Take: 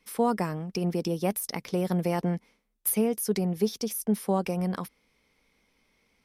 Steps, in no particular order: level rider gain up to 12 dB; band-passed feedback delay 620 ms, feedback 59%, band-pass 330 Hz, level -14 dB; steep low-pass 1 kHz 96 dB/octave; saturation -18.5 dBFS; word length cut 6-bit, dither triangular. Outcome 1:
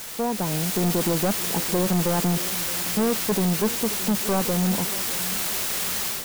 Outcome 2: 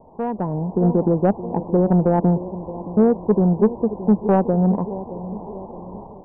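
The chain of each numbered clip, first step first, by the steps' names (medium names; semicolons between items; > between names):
steep low-pass > word length cut > level rider > saturation > band-passed feedback delay; band-passed feedback delay > word length cut > steep low-pass > saturation > level rider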